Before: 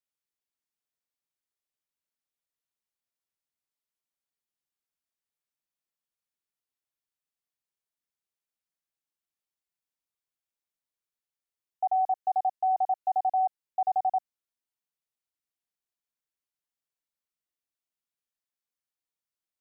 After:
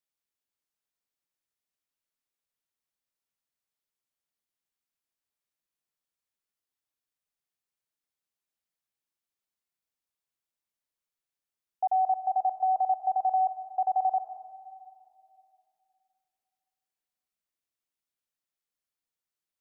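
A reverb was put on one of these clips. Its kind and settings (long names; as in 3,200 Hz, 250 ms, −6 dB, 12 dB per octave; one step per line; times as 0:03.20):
comb and all-pass reverb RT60 2.6 s, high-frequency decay 0.55×, pre-delay 95 ms, DRR 10.5 dB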